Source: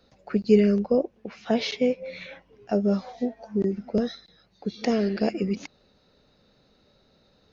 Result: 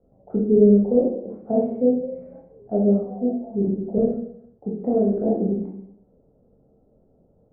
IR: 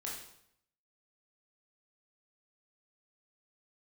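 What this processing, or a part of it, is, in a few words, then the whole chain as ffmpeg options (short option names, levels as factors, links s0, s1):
next room: -filter_complex "[0:a]lowpass=f=660:w=0.5412,lowpass=f=660:w=1.3066[s0];[1:a]atrim=start_sample=2205[s1];[s0][s1]afir=irnorm=-1:irlink=0,volume=1.78"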